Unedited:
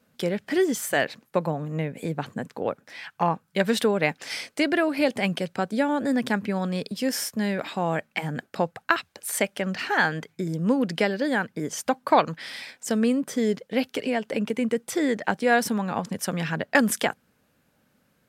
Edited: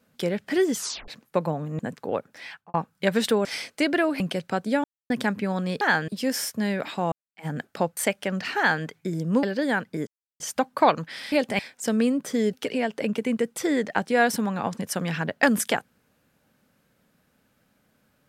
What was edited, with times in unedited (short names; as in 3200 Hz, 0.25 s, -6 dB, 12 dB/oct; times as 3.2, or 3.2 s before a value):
0.77 tape stop 0.31 s
1.79–2.32 cut
3–3.27 studio fade out
3.98–4.24 cut
4.99–5.26 move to 12.62
5.9–6.16 mute
7.91–8.25 fade in exponential
8.76–9.31 cut
9.91–10.18 copy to 6.87
10.77–11.06 cut
11.7 insert silence 0.33 s
13.56–13.85 cut